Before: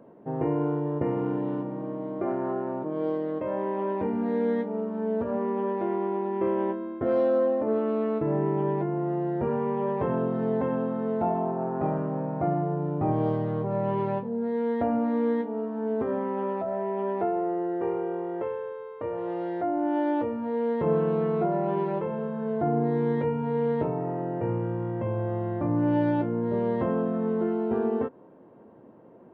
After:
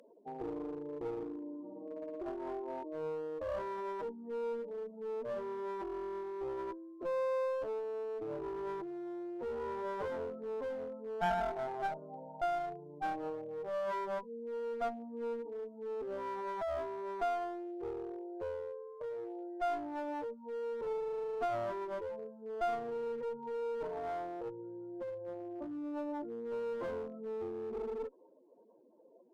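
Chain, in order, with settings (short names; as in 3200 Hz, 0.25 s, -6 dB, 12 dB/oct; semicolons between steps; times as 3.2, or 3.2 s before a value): spectral contrast raised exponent 2.8; HPF 1300 Hz 12 dB/oct; in parallel at -1 dB: vocal rider within 4 dB 2 s; on the sum: one-sided clip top -42.5 dBFS; gain +3.5 dB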